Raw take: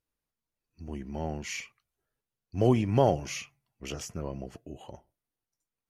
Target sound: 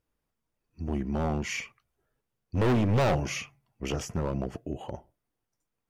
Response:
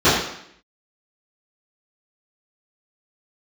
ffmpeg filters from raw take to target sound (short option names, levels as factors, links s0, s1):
-af "highshelf=f=2300:g=-9,bandreject=f=4100:w=17,volume=31.6,asoftclip=hard,volume=0.0316,volume=2.66"